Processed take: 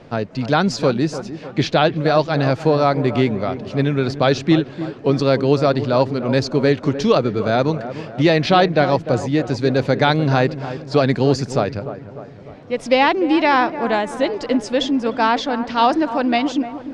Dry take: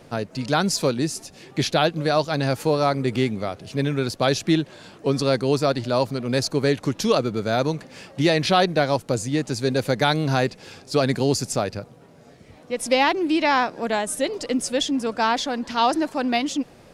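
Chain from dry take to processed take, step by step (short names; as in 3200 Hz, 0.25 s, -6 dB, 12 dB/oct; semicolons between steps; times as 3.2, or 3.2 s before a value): air absorption 150 m; dark delay 0.3 s, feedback 52%, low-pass 1600 Hz, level -12 dB; gain +5 dB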